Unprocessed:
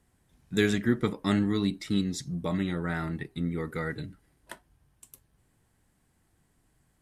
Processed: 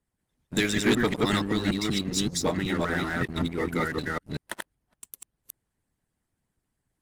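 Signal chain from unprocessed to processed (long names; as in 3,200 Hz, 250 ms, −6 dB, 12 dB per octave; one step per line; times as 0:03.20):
delay that plays each chunk backwards 190 ms, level −0.5 dB
harmonic and percussive parts rebalanced harmonic −15 dB
leveller curve on the samples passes 3
level −2.5 dB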